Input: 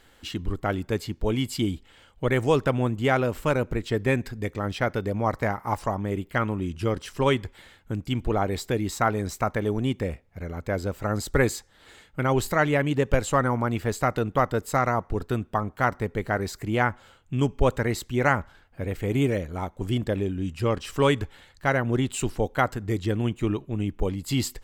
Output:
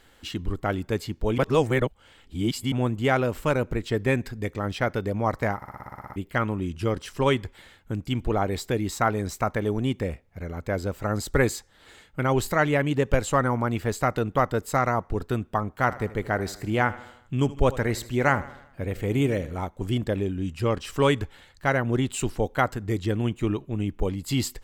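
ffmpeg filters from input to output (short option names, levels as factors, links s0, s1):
-filter_complex "[0:a]asettb=1/sr,asplit=3[s0][s1][s2];[s0]atrim=end=15.794[s3];[s1]atrim=start=15.79:end=19.66,asetpts=PTS-STARTPTS,afade=t=in:d=0.004:c=qsin,afade=t=out:st=3.866:d=0.004:c=qsin,aecho=1:1:78|156|234|312|390:0.141|0.0749|0.0397|0.021|0.0111,atrim=end_sample=170667[s4];[s2]atrim=start=19.656[s5];[s3][s4]acrossfade=d=0.004:c1=hsin:c2=qsin[s6];[s6][s5]acrossfade=d=0.004:c1=qsin:c2=hsin,asplit=13[s7][s8][s9][s10][s11][s12][s13][s14][s15][s16][s17][s18][s19];[s7]atrim=end=1.382[s20];[s8]atrim=start=1.378:end=2.722,asetpts=PTS-STARTPTS,areverse[s21];[s9]atrim=start=2.718:end=5.622[s22];[s10]atrim=start=5.558:end=5.622[s23];[s11]atrim=start=5.558:end=5.622[s24];[s12]atrim=start=5.558:end=5.622[s25];[s13]atrim=start=5.558:end=5.622[s26];[s14]atrim=start=5.558:end=5.622[s27];[s15]atrim=start=5.558:end=5.622[s28];[s16]atrim=start=5.558:end=5.622[s29];[s17]atrim=start=5.558:end=5.622[s30];[s18]atrim=start=5.558:end=5.622[s31];[s19]atrim=start=6.158[s32];[s20][s21]acrossfade=d=0.004:c1=hsin:c2=hsin[s33];[s33][s22]acrossfade=d=0.004:c1=hsin:c2=hsin[s34];[s34][s23]acrossfade=d=0.004:c1=hsin:c2=hsin[s35];[s35][s24]acrossfade=d=0.004:c1=hsin:c2=hsin[s36];[s36][s25]acrossfade=d=0.004:c1=hsin:c2=hsin[s37];[s37][s26]acrossfade=d=0.004:c1=hsin:c2=hsin[s38];[s38][s27]acrossfade=d=0.004:c1=hsin:c2=hsin[s39];[s39][s28]acrossfade=d=0.004:c1=hsin:c2=hsin[s40];[s40][s29]acrossfade=d=0.004:c1=hsin:c2=hsin[s41];[s41][s30]acrossfade=d=0.004:c1=hsin:c2=hsin[s42];[s42][s31]acrossfade=d=0.004:c1=hsin:c2=hsin[s43];[s43][s32]acrossfade=d=0.004:c1=hsin:c2=hsin"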